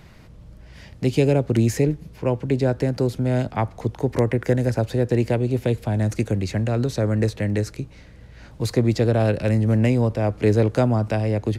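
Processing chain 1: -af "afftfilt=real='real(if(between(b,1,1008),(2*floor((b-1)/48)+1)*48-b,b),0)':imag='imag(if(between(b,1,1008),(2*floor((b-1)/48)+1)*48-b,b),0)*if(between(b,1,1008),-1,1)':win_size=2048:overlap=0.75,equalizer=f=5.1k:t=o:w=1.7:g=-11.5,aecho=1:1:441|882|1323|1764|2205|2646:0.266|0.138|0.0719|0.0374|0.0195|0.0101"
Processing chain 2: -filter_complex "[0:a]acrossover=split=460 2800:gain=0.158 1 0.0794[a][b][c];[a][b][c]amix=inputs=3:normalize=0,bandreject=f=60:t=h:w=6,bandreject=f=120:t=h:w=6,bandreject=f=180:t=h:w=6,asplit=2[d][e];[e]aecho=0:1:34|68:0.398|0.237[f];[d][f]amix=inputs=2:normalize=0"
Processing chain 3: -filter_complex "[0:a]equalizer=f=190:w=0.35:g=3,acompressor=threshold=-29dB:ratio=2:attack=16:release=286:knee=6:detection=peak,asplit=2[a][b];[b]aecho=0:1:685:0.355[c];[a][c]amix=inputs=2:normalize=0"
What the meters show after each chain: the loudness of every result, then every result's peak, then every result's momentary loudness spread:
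-21.5, -29.0, -27.0 LUFS; -5.5, -12.5, -11.0 dBFS; 7, 7, 9 LU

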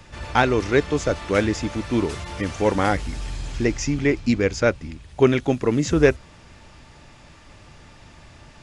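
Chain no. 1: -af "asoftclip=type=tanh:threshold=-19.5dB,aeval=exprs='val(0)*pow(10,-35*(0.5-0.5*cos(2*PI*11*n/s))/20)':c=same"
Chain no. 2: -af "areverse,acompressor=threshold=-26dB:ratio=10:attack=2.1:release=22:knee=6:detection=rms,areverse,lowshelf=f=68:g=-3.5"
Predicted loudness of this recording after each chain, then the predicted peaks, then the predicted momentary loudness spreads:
-34.0, -32.0 LUFS; -19.5, -17.5 dBFS; 13, 18 LU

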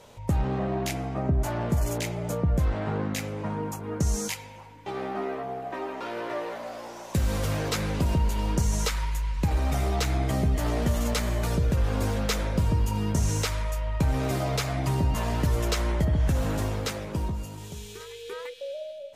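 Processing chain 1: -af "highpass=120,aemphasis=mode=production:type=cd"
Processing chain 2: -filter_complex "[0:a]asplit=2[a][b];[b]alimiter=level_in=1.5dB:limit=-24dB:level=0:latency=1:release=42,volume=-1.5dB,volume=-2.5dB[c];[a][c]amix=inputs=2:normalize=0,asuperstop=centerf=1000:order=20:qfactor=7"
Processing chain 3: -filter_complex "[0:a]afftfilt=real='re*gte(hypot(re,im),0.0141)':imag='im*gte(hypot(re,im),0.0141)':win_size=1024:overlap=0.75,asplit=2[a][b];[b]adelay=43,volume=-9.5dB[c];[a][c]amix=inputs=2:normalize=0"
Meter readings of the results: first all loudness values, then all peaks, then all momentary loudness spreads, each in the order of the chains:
-30.0, -25.5, -28.0 LUFS; -10.0, -12.0, -13.5 dBFS; 10, 8, 11 LU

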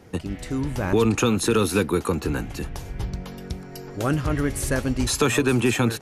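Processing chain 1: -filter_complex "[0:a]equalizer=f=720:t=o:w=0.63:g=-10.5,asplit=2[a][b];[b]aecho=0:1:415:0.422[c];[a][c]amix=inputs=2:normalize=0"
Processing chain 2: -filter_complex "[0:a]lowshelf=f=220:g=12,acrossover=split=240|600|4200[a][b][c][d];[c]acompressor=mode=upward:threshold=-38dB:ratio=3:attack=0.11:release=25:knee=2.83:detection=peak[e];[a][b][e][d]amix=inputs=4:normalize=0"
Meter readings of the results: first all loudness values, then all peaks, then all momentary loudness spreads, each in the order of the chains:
-24.0, -19.0 LUFS; -9.0, -4.0 dBFS; 13, 11 LU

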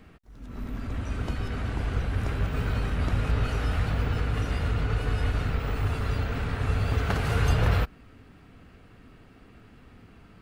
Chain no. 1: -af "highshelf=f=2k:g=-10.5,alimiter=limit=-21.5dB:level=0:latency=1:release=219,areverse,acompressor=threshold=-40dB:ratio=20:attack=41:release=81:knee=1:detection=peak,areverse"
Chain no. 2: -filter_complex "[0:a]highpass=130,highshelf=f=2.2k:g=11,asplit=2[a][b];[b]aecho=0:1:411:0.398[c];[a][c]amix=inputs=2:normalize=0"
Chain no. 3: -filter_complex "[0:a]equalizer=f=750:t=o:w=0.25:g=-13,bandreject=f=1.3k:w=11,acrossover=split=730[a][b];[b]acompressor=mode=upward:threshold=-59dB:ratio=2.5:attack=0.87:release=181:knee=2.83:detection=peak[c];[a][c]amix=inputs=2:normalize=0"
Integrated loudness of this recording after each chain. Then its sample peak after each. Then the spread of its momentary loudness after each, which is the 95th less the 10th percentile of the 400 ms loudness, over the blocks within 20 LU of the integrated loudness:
-42.5, -30.0, -28.5 LUFS; -28.0, -10.5, -12.0 dBFS; 12, 11, 8 LU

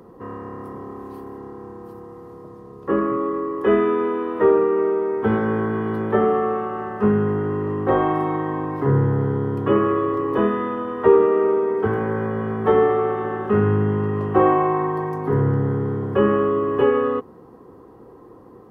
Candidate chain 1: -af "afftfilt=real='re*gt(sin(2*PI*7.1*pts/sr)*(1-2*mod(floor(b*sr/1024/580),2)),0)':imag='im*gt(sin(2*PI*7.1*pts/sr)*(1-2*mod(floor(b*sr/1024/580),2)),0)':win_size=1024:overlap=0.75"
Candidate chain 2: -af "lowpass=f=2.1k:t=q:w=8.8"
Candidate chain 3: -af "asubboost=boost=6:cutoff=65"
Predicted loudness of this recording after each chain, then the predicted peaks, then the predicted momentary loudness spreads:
-23.5, -19.0, -21.5 LUFS; -5.0, -1.5, -3.5 dBFS; 18, 17, 17 LU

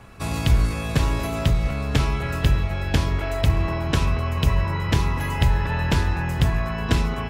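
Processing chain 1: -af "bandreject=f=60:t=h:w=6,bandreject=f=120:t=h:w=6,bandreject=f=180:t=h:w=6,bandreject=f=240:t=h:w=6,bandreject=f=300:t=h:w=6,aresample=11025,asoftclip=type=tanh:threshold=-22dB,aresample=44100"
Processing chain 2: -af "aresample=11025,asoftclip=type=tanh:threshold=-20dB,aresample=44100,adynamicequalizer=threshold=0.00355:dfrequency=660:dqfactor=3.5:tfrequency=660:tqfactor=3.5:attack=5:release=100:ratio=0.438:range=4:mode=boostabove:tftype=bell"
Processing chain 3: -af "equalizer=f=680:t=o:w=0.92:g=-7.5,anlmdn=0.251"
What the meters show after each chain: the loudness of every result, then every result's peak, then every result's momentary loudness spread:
-28.5, -26.5, -23.5 LUFS; -17.5, -14.5, -8.5 dBFS; 1, 2, 3 LU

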